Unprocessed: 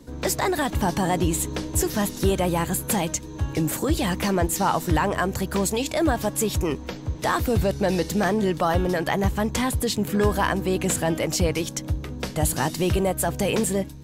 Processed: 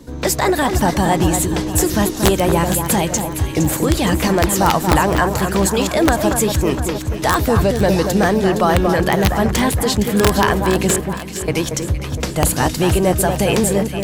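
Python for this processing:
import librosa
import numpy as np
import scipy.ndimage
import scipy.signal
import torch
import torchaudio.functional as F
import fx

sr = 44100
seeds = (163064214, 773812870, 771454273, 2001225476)

y = fx.tone_stack(x, sr, knobs='6-0-2', at=(10.96, 11.48))
y = (np.mod(10.0 ** (11.0 / 20.0) * y + 1.0, 2.0) - 1.0) / 10.0 ** (11.0 / 20.0)
y = fx.echo_alternate(y, sr, ms=232, hz=1800.0, feedback_pct=67, wet_db=-6)
y = F.gain(torch.from_numpy(y), 6.5).numpy()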